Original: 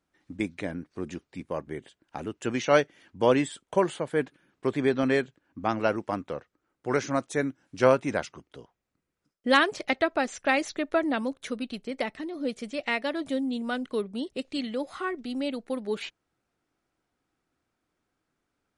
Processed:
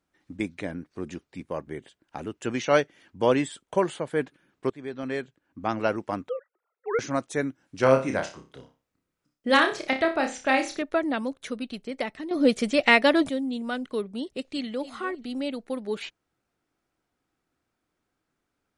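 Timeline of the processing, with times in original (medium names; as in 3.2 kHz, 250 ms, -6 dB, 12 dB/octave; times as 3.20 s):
4.70–5.77 s: fade in, from -18.5 dB
6.29–6.99 s: formants replaced by sine waves
7.80–10.82 s: flutter echo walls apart 5.2 m, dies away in 0.31 s
12.31–13.29 s: gain +10.5 dB
14.43–14.86 s: echo throw 290 ms, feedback 20%, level -15 dB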